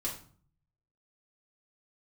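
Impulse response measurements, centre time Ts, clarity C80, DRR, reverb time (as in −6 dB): 25 ms, 12.0 dB, −5.0 dB, 0.45 s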